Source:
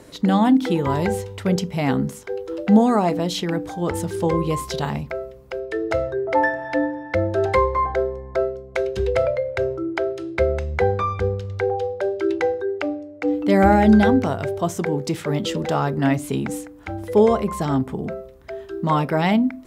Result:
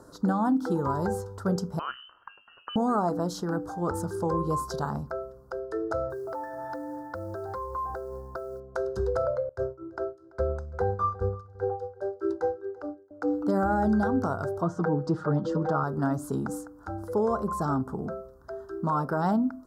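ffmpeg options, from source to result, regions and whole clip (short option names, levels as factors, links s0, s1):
-filter_complex "[0:a]asettb=1/sr,asplit=3[s0][s1][s2];[s0]atrim=end=1.794[s3];[s1]atrim=start=1.79:end=2.76,asetpts=PTS-STARTPTS,afade=t=in:d=0.004:c=qsin,afade=t=out:st=0.966:d=0.004:c=qsin,acompressor=mode=upward:threshold=0.0158:ratio=2.5:attack=3.2:release=140:knee=2.83:detection=peak,lowpass=f=2700:t=q:w=0.5098,lowpass=f=2700:t=q:w=0.6013,lowpass=f=2700:t=q:w=0.9,lowpass=f=2700:t=q:w=2.563,afreqshift=-3200[s4];[s2]atrim=start=2.756[s5];[s3][s4]acrossfade=d=0.004:c1=hsin:c2=qsin[s6];[s6][s5]acrossfade=d=0.004:c1=qsin:c2=hsin,asettb=1/sr,asplit=3[s7][s8][s9];[s7]atrim=end=6.104[s10];[s8]atrim=start=6.1:end=8.6,asetpts=PTS-STARTPTS,afade=t=in:d=0.004:c=qsin,afade=t=out:st=2.496:d=0.004:c=qsin,lowpass=f=5800:w=0.5412,lowpass=f=5800:w=1.3066,acompressor=threshold=0.0501:ratio=16:attack=3.2:release=140:knee=1:detection=peak,acrusher=bits=7:mode=log:mix=0:aa=0.000001[s11];[s9]atrim=start=8.596[s12];[s10][s11]acrossfade=d=0.004:c1=hsin:c2=qsin[s13];[s13][s12]acrossfade=d=0.004:c1=qsin:c2=hsin,asettb=1/sr,asplit=3[s14][s15][s16];[s14]atrim=end=9.494[s17];[s15]atrim=start=9.49:end=13.11,asetpts=PTS-STARTPTS,afade=t=in:d=0.004:c=qsin,afade=t=out:st=3.616:d=0.004:c=qsin,agate=range=0.0224:threshold=0.112:ratio=3:release=100:detection=peak,lowshelf=f=69:g=7.5,aecho=1:1:336|672:0.0794|0.0143,atrim=end_sample=159642[s18];[s16]atrim=start=13.106[s19];[s17][s18]acrossfade=d=0.004:c1=hsin:c2=qsin[s20];[s20][s19]acrossfade=d=0.004:c1=qsin:c2=hsin,asettb=1/sr,asplit=3[s21][s22][s23];[s21]atrim=end=14.624[s24];[s22]atrim=start=14.62:end=15.84,asetpts=PTS-STARTPTS,afade=t=in:d=0.004:c=qsin,afade=t=out:st=1.216:d=0.004:c=qsin,lowpass=3200,aecho=1:1:6.4:0.82,atrim=end_sample=53802[s25];[s23]atrim=start=15.836[s26];[s24][s25]acrossfade=d=0.004:c1=hsin:c2=qsin[s27];[s27][s26]acrossfade=d=0.004:c1=qsin:c2=hsin,firequalizer=gain_entry='entry(580,0);entry(1400,8);entry(2200,-30);entry(4700,-2)':delay=0.05:min_phase=1,alimiter=limit=0.282:level=0:latency=1:release=148,volume=0.501"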